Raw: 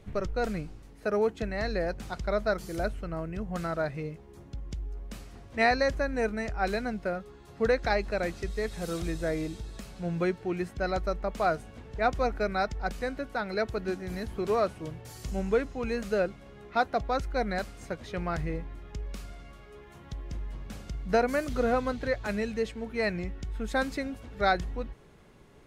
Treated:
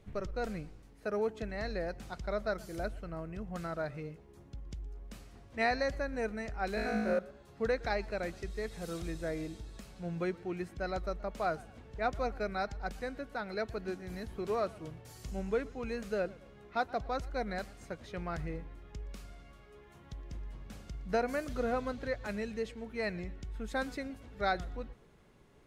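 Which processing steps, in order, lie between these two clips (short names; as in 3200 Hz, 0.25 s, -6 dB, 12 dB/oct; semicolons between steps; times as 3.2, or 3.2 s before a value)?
6.75–7.19 flutter echo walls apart 3.2 m, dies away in 1.3 s; warbling echo 0.118 s, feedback 36%, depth 114 cents, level -22 dB; gain -6.5 dB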